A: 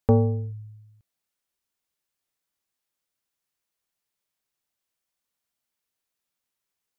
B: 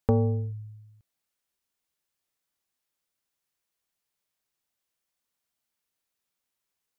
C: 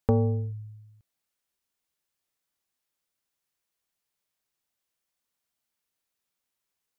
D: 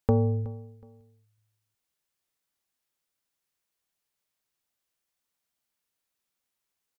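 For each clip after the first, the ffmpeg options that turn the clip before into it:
-af "acompressor=threshold=-21dB:ratio=2.5"
-af anull
-af "aecho=1:1:370|740:0.106|0.0307"

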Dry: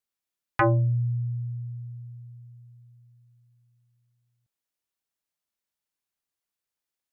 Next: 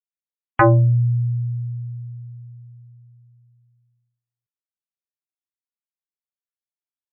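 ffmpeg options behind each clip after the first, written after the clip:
-af "lowpass=2k,afftdn=nr=25:nf=-49,volume=8dB"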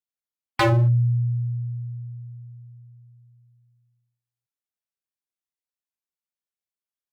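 -af "aeval=exprs='0.251*(abs(mod(val(0)/0.251+3,4)-2)-1)':c=same,volume=-2dB"

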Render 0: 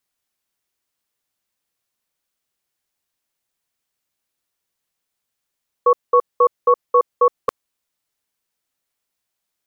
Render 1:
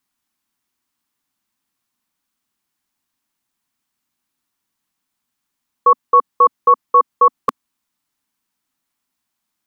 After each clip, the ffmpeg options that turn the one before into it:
-af "equalizer=f=250:t=o:w=1:g=11,equalizer=f=500:t=o:w=1:g=-9,equalizer=f=1k:t=o:w=1:g=6,volume=1.5dB"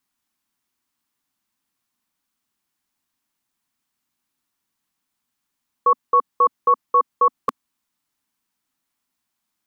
-af "alimiter=limit=-7dB:level=0:latency=1:release=13,volume=-1.5dB"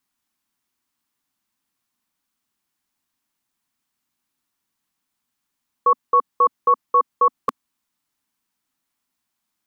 -af anull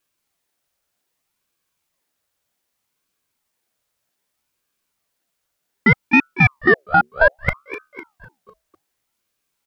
-filter_complex "[0:a]aeval=exprs='0.398*(cos(1*acos(clip(val(0)/0.398,-1,1)))-cos(1*PI/2))+0.0178*(cos(4*acos(clip(val(0)/0.398,-1,1)))-cos(4*PI/2))':c=same,asplit=6[a][b][c][d][e][f];[b]adelay=251,afreqshift=-70,volume=-14.5dB[g];[c]adelay=502,afreqshift=-140,volume=-20.3dB[h];[d]adelay=753,afreqshift=-210,volume=-26.2dB[i];[e]adelay=1004,afreqshift=-280,volume=-32dB[j];[f]adelay=1255,afreqshift=-350,volume=-37.9dB[k];[a][g][h][i][j][k]amix=inputs=6:normalize=0,aeval=exprs='val(0)*sin(2*PI*850*n/s+850*0.65/0.64*sin(2*PI*0.64*n/s))':c=same,volume=6dB"

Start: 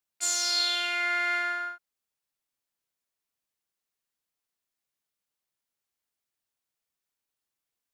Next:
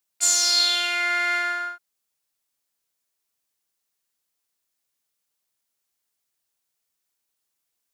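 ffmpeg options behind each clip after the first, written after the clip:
-af "bass=f=250:g=-2,treble=f=4k:g=5,volume=4dB"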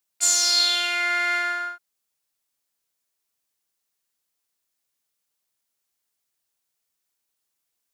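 -af anull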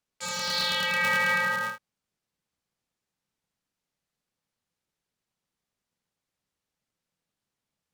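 -filter_complex "[0:a]aemphasis=mode=reproduction:type=bsi,acrossover=split=4000[a][b];[b]acompressor=threshold=-39dB:ratio=4:attack=1:release=60[c];[a][c]amix=inputs=2:normalize=0,aeval=exprs='val(0)*sgn(sin(2*PI*170*n/s))':c=same"

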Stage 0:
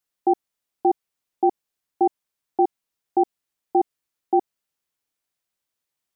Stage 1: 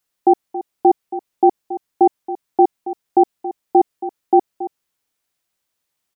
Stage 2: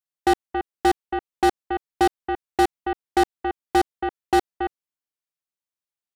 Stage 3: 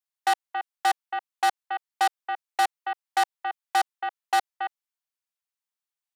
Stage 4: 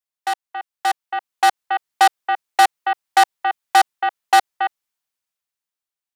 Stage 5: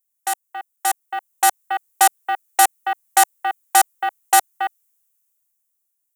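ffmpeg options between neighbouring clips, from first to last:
-af "aecho=1:1:276:0.2,volume=6.5dB"
-af "asoftclip=type=tanh:threshold=-14dB,aeval=exprs='0.2*(cos(1*acos(clip(val(0)/0.2,-1,1)))-cos(1*PI/2))+0.0316*(cos(7*acos(clip(val(0)/0.2,-1,1)))-cos(7*PI/2))':c=same,volume=1dB"
-af "highpass=f=700:w=0.5412,highpass=f=700:w=1.3066"
-af "dynaudnorm=f=270:g=9:m=12dB"
-af "aexciter=amount=5.1:drive=7:freq=6.4k,volume=-2dB"

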